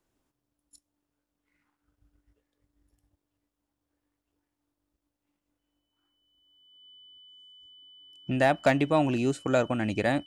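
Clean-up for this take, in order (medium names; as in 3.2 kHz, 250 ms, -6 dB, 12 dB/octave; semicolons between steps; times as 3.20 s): clip repair -13.5 dBFS; band-stop 3 kHz, Q 30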